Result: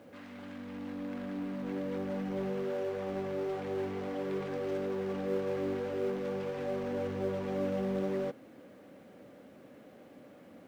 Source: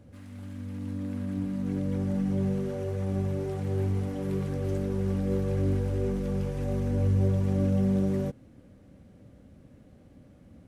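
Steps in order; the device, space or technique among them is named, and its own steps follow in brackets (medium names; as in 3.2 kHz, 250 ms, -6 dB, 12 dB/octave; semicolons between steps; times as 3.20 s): phone line with mismatched companding (band-pass 380–3500 Hz; companding laws mixed up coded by mu)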